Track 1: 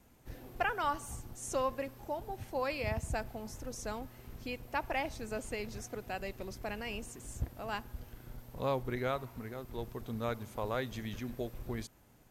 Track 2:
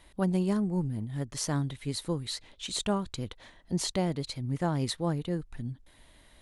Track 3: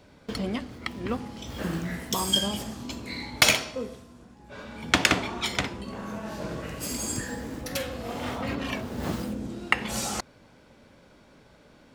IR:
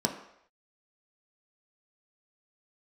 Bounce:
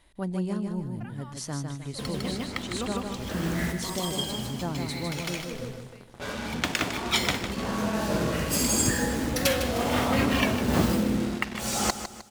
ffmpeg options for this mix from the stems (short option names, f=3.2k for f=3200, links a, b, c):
-filter_complex "[0:a]adelay=400,volume=-16.5dB[a];[1:a]volume=-4dB,asplit=3[b][c][d];[c]volume=-5dB[e];[2:a]dynaudnorm=f=170:g=3:m=5dB,alimiter=limit=-11.5dB:level=0:latency=1:release=438,acrusher=bits=5:mix=0:aa=0.5,adelay=1700,volume=2dB,asplit=2[f][g];[g]volume=-10.5dB[h];[d]apad=whole_len=601627[i];[f][i]sidechaincompress=threshold=-40dB:ratio=12:attack=5.4:release=727[j];[e][h]amix=inputs=2:normalize=0,aecho=0:1:154|308|462|616|770:1|0.38|0.144|0.0549|0.0209[k];[a][b][j][k]amix=inputs=4:normalize=0"